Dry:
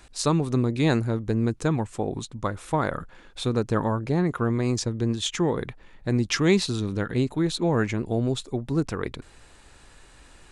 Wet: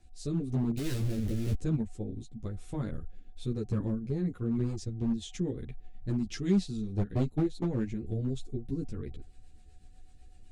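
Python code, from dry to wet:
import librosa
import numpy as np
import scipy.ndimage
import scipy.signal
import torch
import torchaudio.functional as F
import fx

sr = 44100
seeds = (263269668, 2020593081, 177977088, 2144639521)

p1 = fx.clip_1bit(x, sr, at=(0.77, 1.54))
p2 = fx.peak_eq(p1, sr, hz=370.0, db=4.5, octaves=1.9)
p3 = p2 + 10.0 ** (-44.0 / 20.0) * np.sin(2.0 * np.pi * 740.0 * np.arange(len(p2)) / sr)
p4 = fx.level_steps(p3, sr, step_db=11)
p5 = p3 + (p4 * librosa.db_to_amplitude(-2.5))
p6 = fx.transient(p5, sr, attack_db=11, sustain_db=-6, at=(6.85, 7.86), fade=0.02)
p7 = fx.rotary_switch(p6, sr, hz=1.0, then_hz=8.0, switch_at_s=3.79)
p8 = fx.tone_stack(p7, sr, knobs='10-0-1')
p9 = np.clip(p8, -10.0 ** (-27.5 / 20.0), 10.0 ** (-27.5 / 20.0))
p10 = fx.ensemble(p9, sr)
y = p10 * librosa.db_to_amplitude(8.5)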